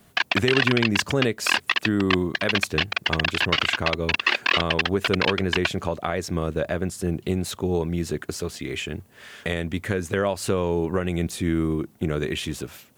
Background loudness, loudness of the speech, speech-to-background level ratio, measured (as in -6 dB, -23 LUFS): -23.5 LUFS, -26.5 LUFS, -3.0 dB